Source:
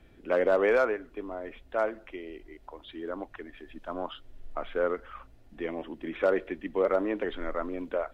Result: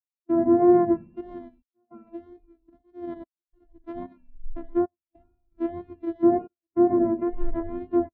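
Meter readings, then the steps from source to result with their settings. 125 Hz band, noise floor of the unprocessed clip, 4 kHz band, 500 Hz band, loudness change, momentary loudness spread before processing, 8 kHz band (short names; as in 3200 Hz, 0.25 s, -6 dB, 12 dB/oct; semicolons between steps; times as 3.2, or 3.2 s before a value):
+8.5 dB, -56 dBFS, under -20 dB, +1.5 dB, +6.5 dB, 20 LU, n/a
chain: sample sorter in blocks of 128 samples; treble ducked by the level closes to 1600 Hz, closed at -25 dBFS; spring tank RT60 1.6 s, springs 59 ms, chirp 45 ms, DRR 6.5 dB; step gate "..xxxxxxxxx" 102 bpm -24 dB; wow and flutter 47 cents; maximiser +22 dB; spectral expander 2.5:1; gain -7.5 dB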